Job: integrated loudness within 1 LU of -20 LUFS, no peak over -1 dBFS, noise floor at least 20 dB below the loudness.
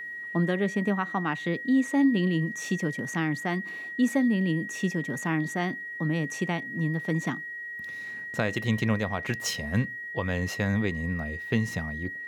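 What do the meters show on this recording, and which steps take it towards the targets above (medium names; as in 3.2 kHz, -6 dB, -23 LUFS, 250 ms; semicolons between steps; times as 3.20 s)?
steady tone 1.9 kHz; tone level -35 dBFS; loudness -28.5 LUFS; peak level -13.5 dBFS; loudness target -20.0 LUFS
-> band-stop 1.9 kHz, Q 30; trim +8.5 dB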